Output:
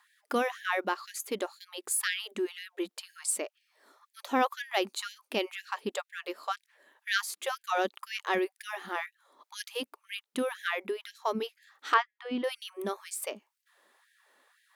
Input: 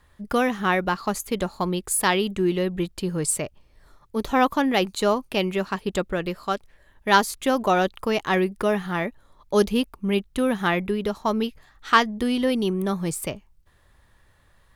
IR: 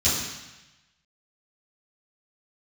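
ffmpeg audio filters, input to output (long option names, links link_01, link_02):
-filter_complex "[0:a]asettb=1/sr,asplit=3[link_01][link_02][link_03];[link_01]atrim=end=11.944[link_04];[link_02]atrim=start=11.94:end=12.44,asetpts=PTS-STARTPTS,afade=type=in:duration=0.004:curve=qsin,afade=type=out:start_time=0.496:duration=0.004:curve=qsin,highpass=130,lowpass=2300[link_05];[link_03]atrim=start=12.436[link_06];[link_04][link_05]acrossfade=duration=0.004:curve1=hsin:curve2=qsin[link_07];[link_07][link_06]acrossfade=duration=0.004:curve1=qsin:curve2=hsin,asplit=2[link_08][link_09];[link_09]acompressor=threshold=-36dB:ratio=6,volume=0dB[link_10];[link_08][link_10]amix=inputs=2:normalize=0,afftfilt=real='re*gte(b*sr/1024,210*pow(1600/210,0.5+0.5*sin(2*PI*2*pts/sr)))':imag='im*gte(b*sr/1024,210*pow(1600/210,0.5+0.5*sin(2*PI*2*pts/sr)))':win_size=1024:overlap=0.75,volume=-7.5dB"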